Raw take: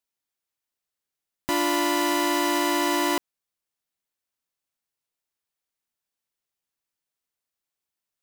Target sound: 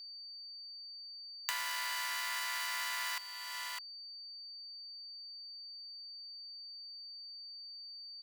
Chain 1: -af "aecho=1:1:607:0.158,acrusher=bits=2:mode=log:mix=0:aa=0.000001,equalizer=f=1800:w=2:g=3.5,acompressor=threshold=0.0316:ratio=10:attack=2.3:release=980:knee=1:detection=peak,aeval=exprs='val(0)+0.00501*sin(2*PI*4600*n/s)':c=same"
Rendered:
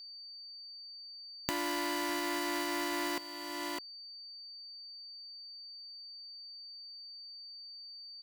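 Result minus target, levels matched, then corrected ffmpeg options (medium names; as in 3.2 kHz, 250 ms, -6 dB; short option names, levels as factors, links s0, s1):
1 kHz band +3.0 dB
-af "aecho=1:1:607:0.158,acrusher=bits=2:mode=log:mix=0:aa=0.000001,highpass=f=1100:w=0.5412,highpass=f=1100:w=1.3066,equalizer=f=1800:w=2:g=3.5,acompressor=threshold=0.0316:ratio=10:attack=2.3:release=980:knee=1:detection=peak,aeval=exprs='val(0)+0.00501*sin(2*PI*4600*n/s)':c=same"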